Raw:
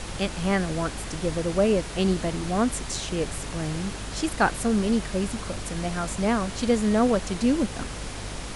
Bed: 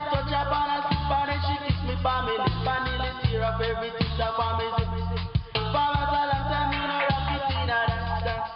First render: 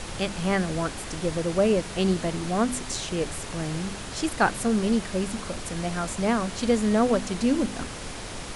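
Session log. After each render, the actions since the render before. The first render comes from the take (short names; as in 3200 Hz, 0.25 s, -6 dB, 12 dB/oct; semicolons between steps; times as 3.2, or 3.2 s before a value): de-hum 50 Hz, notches 6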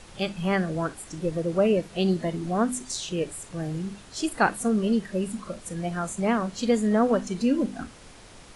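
noise print and reduce 12 dB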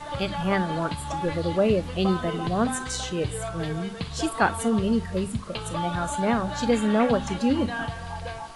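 add bed -7 dB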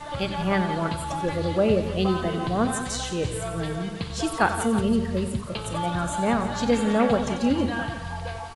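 tapped delay 92/173/326 ms -12/-12/-16 dB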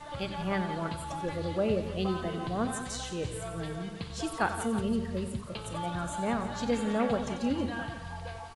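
gain -7.5 dB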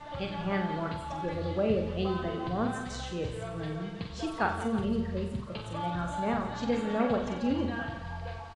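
air absorption 100 m; doubler 45 ms -6.5 dB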